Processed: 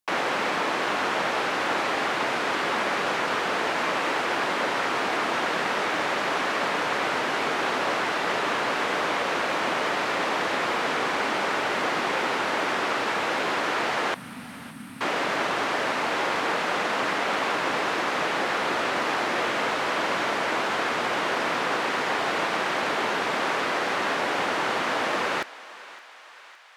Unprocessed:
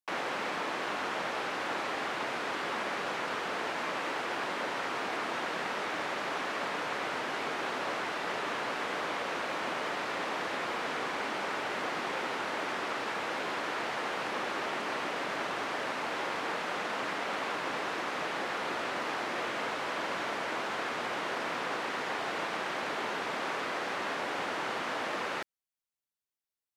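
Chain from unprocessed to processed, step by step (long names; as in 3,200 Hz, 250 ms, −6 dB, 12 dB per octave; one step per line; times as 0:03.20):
0:14.14–0:15.01: Chebyshev band-stop filter 260–8,600 Hz, order 5
on a send: feedback echo with a high-pass in the loop 563 ms, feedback 68%, high-pass 700 Hz, level −17 dB
on the sum: level +8.5 dB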